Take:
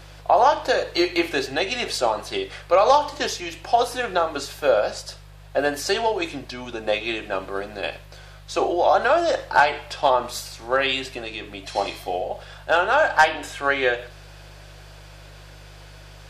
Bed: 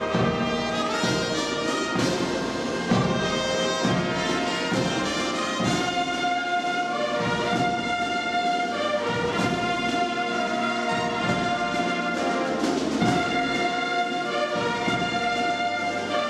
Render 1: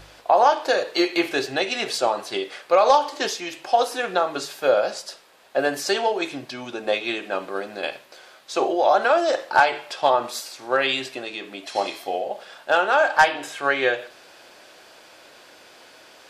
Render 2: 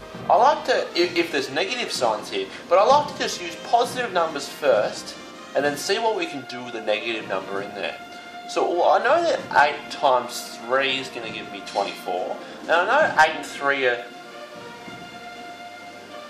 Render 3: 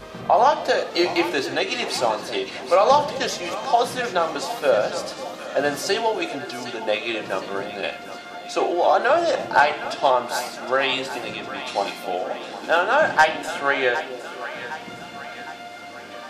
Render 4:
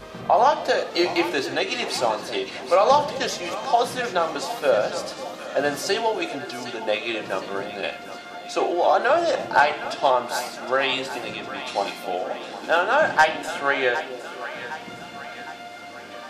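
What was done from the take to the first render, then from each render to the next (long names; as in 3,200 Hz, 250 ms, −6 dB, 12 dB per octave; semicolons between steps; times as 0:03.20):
hum removal 50 Hz, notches 3
mix in bed −13.5 dB
echo with a time of its own for lows and highs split 650 Hz, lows 265 ms, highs 761 ms, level −12 dB
level −1 dB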